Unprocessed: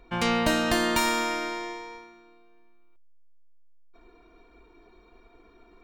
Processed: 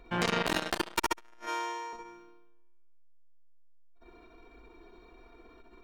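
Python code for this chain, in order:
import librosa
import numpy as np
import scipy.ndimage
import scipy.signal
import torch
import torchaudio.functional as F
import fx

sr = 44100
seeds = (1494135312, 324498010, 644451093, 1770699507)

p1 = fx.highpass(x, sr, hz=560.0, slope=12, at=(1.4, 1.93))
p2 = p1 + fx.room_early_taps(p1, sr, ms=(62, 74), db=(-4.0, -12.0), dry=0)
y = fx.transformer_sat(p2, sr, knee_hz=1600.0)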